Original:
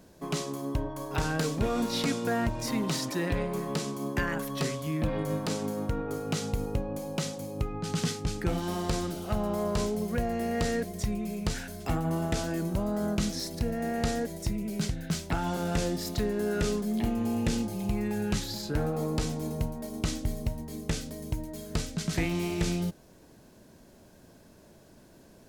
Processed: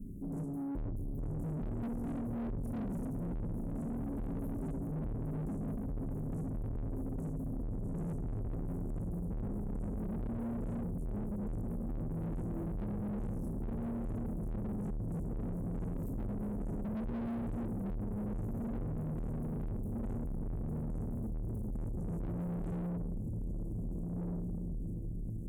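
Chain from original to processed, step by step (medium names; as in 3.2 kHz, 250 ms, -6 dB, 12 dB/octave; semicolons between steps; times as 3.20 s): inverse Chebyshev band-stop 1–3.8 kHz, stop band 60 dB; tone controls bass +12 dB, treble 0 dB; hum notches 60/120/180/240/300/360/420 Hz; echo that smears into a reverb 1587 ms, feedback 54%, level -7.5 dB; reverberation RT60 0.85 s, pre-delay 3 ms, DRR -4.5 dB; valve stage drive 27 dB, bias 0.35; tilt shelf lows +4.5 dB, about 700 Hz; peak limiter -31 dBFS, peak gain reduction 11 dB; trim -3.5 dB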